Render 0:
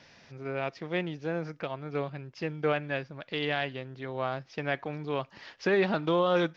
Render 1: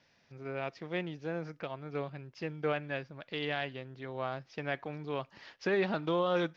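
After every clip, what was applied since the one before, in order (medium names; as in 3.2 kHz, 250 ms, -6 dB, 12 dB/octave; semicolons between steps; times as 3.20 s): gate -53 dBFS, range -8 dB; trim -4.5 dB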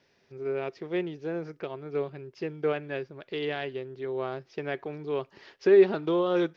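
peaking EQ 390 Hz +14 dB 0.42 oct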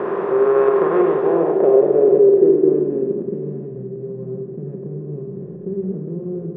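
spectral levelling over time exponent 0.2; low-pass sweep 1.1 kHz -> 160 Hz, 0.97–3.67 s; Schroeder reverb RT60 1.1 s, combs from 32 ms, DRR 2 dB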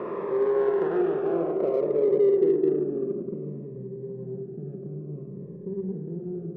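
in parallel at -9.5 dB: saturation -19 dBFS, distortion -7 dB; on the sum: Shepard-style phaser falling 0.57 Hz; trim -9 dB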